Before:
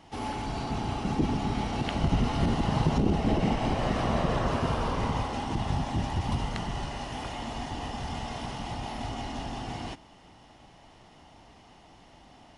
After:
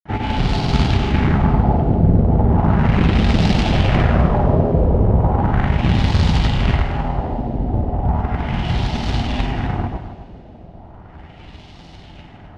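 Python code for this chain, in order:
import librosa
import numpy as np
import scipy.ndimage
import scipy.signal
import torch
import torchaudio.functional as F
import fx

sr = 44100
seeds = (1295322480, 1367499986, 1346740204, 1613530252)

p1 = fx.low_shelf(x, sr, hz=270.0, db=12.0)
p2 = fx.notch(p1, sr, hz=1100.0, q=8.1)
p3 = fx.over_compress(p2, sr, threshold_db=-21.0, ratio=-0.5)
p4 = p2 + (p3 * 10.0 ** (0.5 / 20.0))
p5 = fx.quant_companded(p4, sr, bits=4)
p6 = fx.granulator(p5, sr, seeds[0], grain_ms=100.0, per_s=20.0, spray_ms=100.0, spread_st=0)
p7 = fx.filter_lfo_lowpass(p6, sr, shape='sine', hz=0.36, low_hz=520.0, high_hz=4300.0, q=1.7)
p8 = p7 + fx.echo_single(p7, sr, ms=260, db=-12.5, dry=0)
y = fx.rev_double_slope(p8, sr, seeds[1], early_s=0.24, late_s=3.6, knee_db=-18, drr_db=10.0)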